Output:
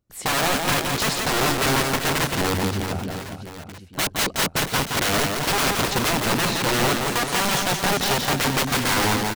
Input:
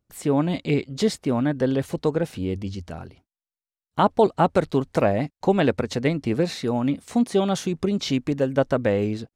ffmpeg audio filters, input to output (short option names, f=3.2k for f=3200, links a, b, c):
-af "dynaudnorm=f=100:g=3:m=4dB,aeval=exprs='(mod(7.08*val(0)+1,2)-1)/7.08':c=same,aecho=1:1:170|391|678.3|1052|1537:0.631|0.398|0.251|0.158|0.1"